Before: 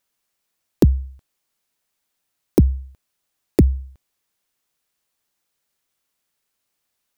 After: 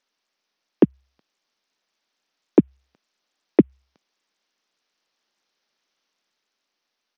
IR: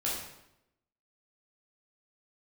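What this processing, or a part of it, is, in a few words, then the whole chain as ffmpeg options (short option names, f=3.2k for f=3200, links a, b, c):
Bluetooth headset: -af "highpass=f=200:w=0.5412,highpass=f=200:w=1.3066,dynaudnorm=f=410:g=7:m=3dB,aresample=16000,aresample=44100,volume=1.5dB" -ar 48000 -c:a sbc -b:a 64k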